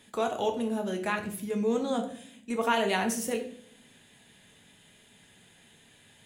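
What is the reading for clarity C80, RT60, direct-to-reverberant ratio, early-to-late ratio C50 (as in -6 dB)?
13.0 dB, 0.60 s, 3.0 dB, 9.0 dB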